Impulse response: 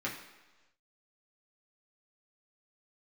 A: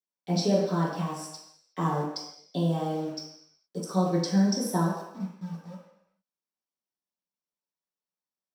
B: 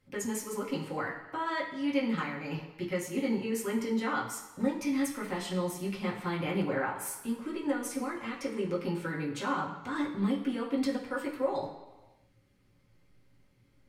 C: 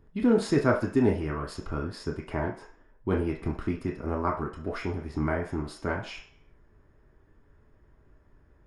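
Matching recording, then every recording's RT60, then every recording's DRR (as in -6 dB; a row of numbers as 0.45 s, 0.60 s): B; no single decay rate, 1.2 s, 0.50 s; -9.0 dB, -5.0 dB, -1.0 dB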